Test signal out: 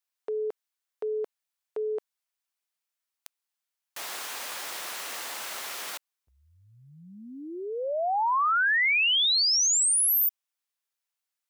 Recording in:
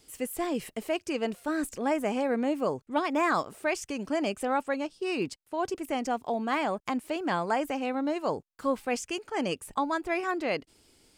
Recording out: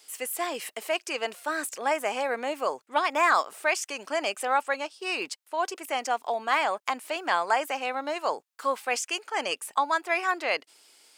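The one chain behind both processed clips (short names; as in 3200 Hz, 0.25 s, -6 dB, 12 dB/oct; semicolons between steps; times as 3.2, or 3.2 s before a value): HPF 760 Hz 12 dB/oct; gain +6.5 dB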